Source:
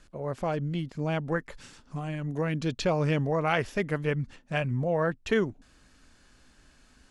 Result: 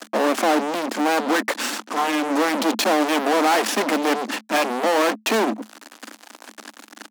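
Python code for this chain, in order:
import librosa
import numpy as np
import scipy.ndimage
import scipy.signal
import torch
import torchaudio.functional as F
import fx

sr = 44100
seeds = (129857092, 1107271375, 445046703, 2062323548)

y = fx.fuzz(x, sr, gain_db=50.0, gate_db=-53.0)
y = scipy.signal.sosfilt(scipy.signal.cheby1(6, 6, 210.0, 'highpass', fs=sr, output='sos'), y)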